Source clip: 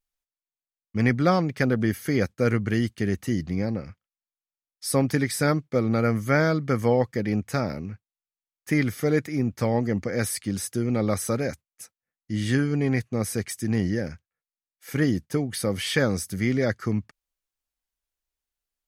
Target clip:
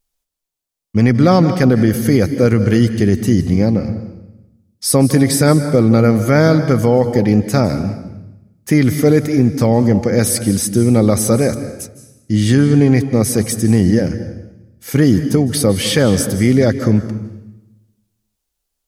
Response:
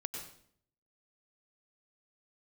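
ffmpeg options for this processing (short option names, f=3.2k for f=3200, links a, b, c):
-filter_complex "[0:a]equalizer=f=1.8k:t=o:w=1.6:g=-7,asplit=2[a][b];[1:a]atrim=start_sample=2205,asetrate=26460,aresample=44100[c];[b][c]afir=irnorm=-1:irlink=0,volume=-9dB[d];[a][d]amix=inputs=2:normalize=0,alimiter=level_in=11.5dB:limit=-1dB:release=50:level=0:latency=1,volume=-1dB"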